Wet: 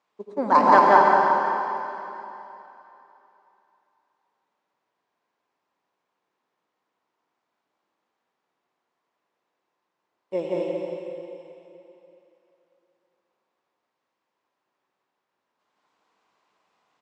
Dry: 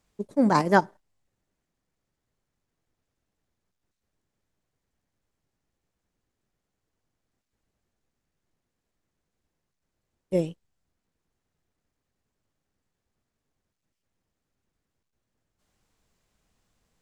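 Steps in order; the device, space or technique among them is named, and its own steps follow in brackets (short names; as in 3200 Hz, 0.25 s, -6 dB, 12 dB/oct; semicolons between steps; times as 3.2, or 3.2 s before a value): station announcement (BPF 390–3900 Hz; bell 1000 Hz +9 dB 0.55 oct; loudspeakers at several distances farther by 59 m -1 dB, 77 m -4 dB; reverb RT60 3.1 s, pre-delay 69 ms, DRR -0.5 dB); gain -1 dB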